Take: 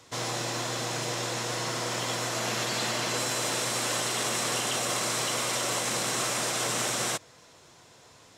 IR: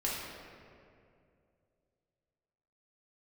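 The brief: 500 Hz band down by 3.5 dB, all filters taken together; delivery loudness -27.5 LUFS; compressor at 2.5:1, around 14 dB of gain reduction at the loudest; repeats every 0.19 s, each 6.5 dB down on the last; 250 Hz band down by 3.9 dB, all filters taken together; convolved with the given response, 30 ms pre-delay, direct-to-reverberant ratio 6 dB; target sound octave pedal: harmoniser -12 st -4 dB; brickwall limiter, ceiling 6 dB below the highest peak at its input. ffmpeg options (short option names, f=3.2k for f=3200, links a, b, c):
-filter_complex "[0:a]equalizer=f=250:t=o:g=-4,equalizer=f=500:t=o:g=-3.5,acompressor=threshold=-49dB:ratio=2.5,alimiter=level_in=13dB:limit=-24dB:level=0:latency=1,volume=-13dB,aecho=1:1:190|380|570|760|950|1140:0.473|0.222|0.105|0.0491|0.0231|0.0109,asplit=2[a][b];[1:a]atrim=start_sample=2205,adelay=30[c];[b][c]afir=irnorm=-1:irlink=0,volume=-11.5dB[d];[a][d]amix=inputs=2:normalize=0,asplit=2[e][f];[f]asetrate=22050,aresample=44100,atempo=2,volume=-4dB[g];[e][g]amix=inputs=2:normalize=0,volume=15dB"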